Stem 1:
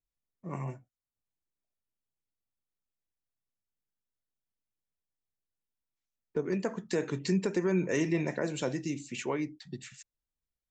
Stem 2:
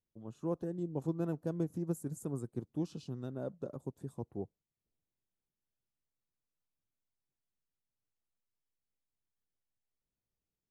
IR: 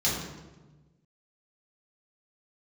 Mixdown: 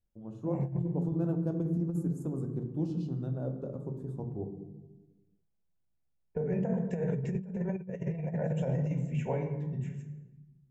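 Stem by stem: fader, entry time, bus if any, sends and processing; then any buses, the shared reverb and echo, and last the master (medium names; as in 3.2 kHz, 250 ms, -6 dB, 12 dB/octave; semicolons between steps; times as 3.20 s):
-2.5 dB, 0.00 s, send -12.5 dB, tilt shelf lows +5 dB, about 1.3 kHz; static phaser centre 1.2 kHz, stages 6; auto duck -13 dB, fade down 2.00 s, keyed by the second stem
-1.5 dB, 0.00 s, send -15 dB, none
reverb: on, RT60 1.2 s, pre-delay 3 ms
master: bass shelf 67 Hz +6.5 dB; compressor with a negative ratio -30 dBFS, ratio -0.5; treble shelf 2.3 kHz -11.5 dB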